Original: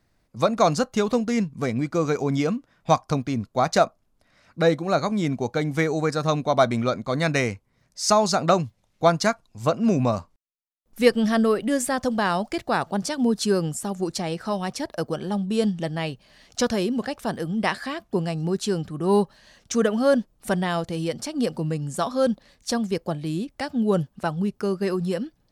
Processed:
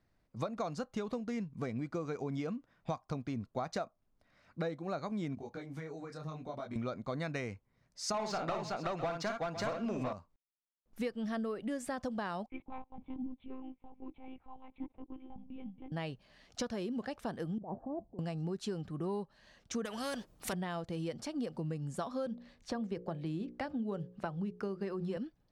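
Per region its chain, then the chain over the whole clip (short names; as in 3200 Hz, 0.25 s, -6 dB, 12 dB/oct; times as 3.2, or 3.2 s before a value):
5.35–6.76 compressor, threshold -28 dBFS + detuned doubles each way 25 cents
8.14–10.13 overdrive pedal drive 19 dB, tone 3800 Hz, clips at -6 dBFS + tapped delay 55/375/503 ms -5.5/-4/-17 dB
12.46–15.92 vowel filter u + monotone LPC vocoder at 8 kHz 260 Hz
17.58–18.19 steep low-pass 840 Hz 48 dB/oct + negative-ratio compressor -34 dBFS
19.85–20.53 HPF 68 Hz 6 dB/oct + high shelf 5300 Hz +7.5 dB + spectral compressor 2:1
22.26–25.17 high shelf 5900 Hz -10 dB + notches 60/120/180/240/300/360/420/480/540 Hz + three-band squash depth 40%
whole clip: high shelf 5600 Hz -11 dB; compressor 10:1, threshold -26 dBFS; gain -7.5 dB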